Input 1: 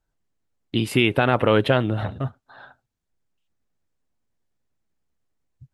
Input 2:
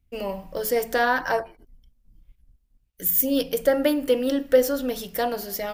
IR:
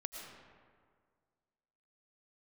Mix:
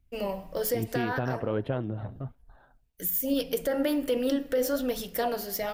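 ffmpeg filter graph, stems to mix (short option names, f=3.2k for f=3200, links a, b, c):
-filter_complex "[0:a]tiltshelf=f=1.3k:g=8,volume=-12dB,asplit=2[a][b];[1:a]volume=2dB,asplit=2[c][d];[d]volume=-23.5dB[e];[b]apad=whole_len=252886[f];[c][f]sidechaincompress=threshold=-29dB:ratio=8:attack=12:release=462[g];[2:a]atrim=start_sample=2205[h];[e][h]afir=irnorm=-1:irlink=0[i];[a][g][i]amix=inputs=3:normalize=0,flanger=delay=0:depth=8.7:regen=77:speed=1.2:shape=triangular,alimiter=limit=-18dB:level=0:latency=1:release=93"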